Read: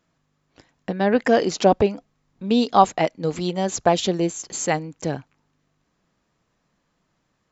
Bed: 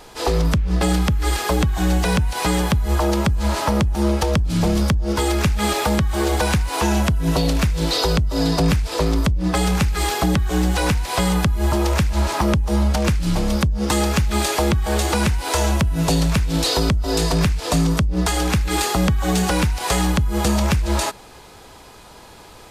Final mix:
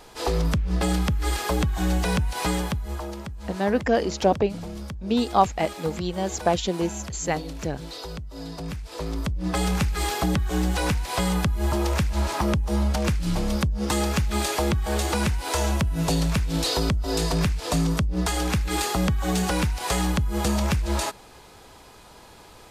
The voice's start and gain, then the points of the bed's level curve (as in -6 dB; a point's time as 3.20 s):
2.60 s, -4.0 dB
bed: 2.49 s -5 dB
3.21 s -17 dB
8.59 s -17 dB
9.60 s -5 dB